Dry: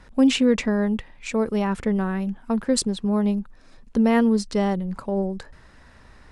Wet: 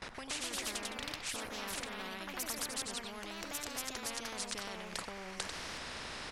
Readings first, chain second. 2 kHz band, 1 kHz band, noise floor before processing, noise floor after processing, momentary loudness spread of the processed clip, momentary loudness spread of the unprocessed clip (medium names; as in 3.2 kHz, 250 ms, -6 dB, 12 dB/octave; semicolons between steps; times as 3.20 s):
-7.5 dB, -12.5 dB, -51 dBFS, -47 dBFS, 5 LU, 10 LU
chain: peak limiter -19.5 dBFS, peak gain reduction 11.5 dB; treble shelf 6.2 kHz -9.5 dB; on a send: delay 94 ms -14 dB; on the sum: ever faster or slower copies 146 ms, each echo +2 st, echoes 3; gate with hold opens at -41 dBFS; reverse; compression 4:1, threshold -35 dBFS, peak gain reduction 13.5 dB; reverse; bass shelf 240 Hz -6.5 dB; spectrum-flattening compressor 4:1; trim +8 dB